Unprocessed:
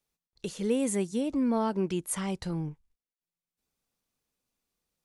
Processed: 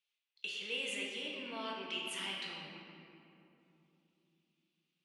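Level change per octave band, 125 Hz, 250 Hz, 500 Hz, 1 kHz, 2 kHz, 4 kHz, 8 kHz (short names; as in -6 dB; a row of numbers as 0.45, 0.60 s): -23.5, -20.5, -15.0, -10.0, +5.0, +7.5, -13.0 dB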